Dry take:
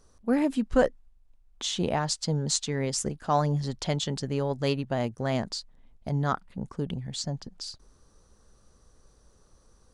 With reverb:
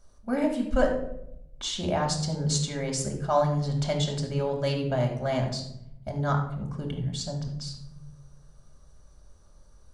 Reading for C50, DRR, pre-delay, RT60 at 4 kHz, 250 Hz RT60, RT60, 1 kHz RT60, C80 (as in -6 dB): 6.0 dB, 0.0 dB, 3 ms, 0.45 s, 1.6 s, 0.75 s, 0.65 s, 9.5 dB